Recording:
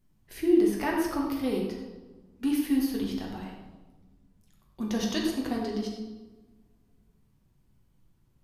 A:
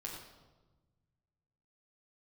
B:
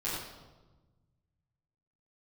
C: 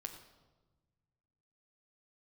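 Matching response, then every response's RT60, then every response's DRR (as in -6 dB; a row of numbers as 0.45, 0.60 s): A; 1.2, 1.2, 1.3 s; -2.0, -11.0, 5.5 dB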